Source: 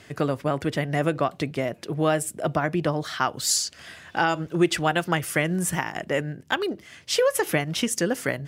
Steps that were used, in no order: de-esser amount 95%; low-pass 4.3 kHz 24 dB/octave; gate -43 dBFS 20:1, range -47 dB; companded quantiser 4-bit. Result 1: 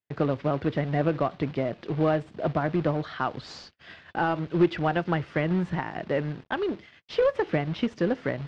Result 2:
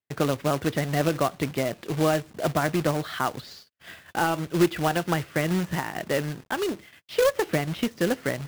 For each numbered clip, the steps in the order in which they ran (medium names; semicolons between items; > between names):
companded quantiser > de-esser > gate > low-pass; de-esser > low-pass > companded quantiser > gate